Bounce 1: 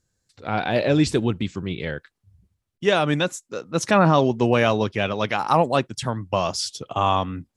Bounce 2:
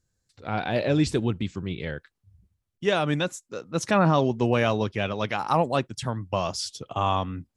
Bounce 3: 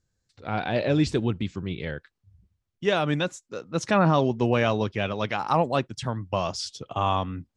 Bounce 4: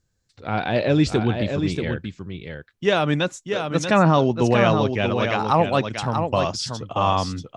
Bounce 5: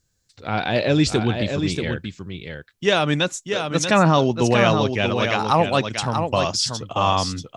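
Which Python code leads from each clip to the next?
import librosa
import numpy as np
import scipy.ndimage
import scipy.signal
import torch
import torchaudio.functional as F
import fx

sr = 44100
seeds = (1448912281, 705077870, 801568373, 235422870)

y1 = fx.low_shelf(x, sr, hz=110.0, db=5.5)
y1 = y1 * 10.0 ** (-4.5 / 20.0)
y2 = scipy.signal.sosfilt(scipy.signal.butter(2, 6900.0, 'lowpass', fs=sr, output='sos'), y1)
y3 = y2 + 10.0 ** (-6.5 / 20.0) * np.pad(y2, (int(635 * sr / 1000.0), 0))[:len(y2)]
y3 = y3 * 10.0 ** (4.0 / 20.0)
y4 = fx.high_shelf(y3, sr, hz=3200.0, db=9.0)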